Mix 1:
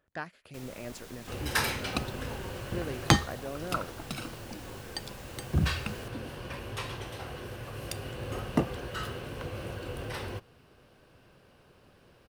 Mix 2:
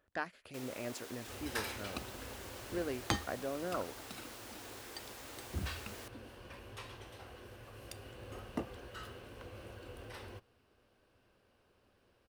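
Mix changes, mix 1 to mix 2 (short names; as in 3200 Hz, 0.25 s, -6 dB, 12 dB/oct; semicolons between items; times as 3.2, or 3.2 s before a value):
first sound: add brick-wall FIR high-pass 230 Hz; second sound -11.0 dB; master: add bell 150 Hz -14.5 dB 0.27 oct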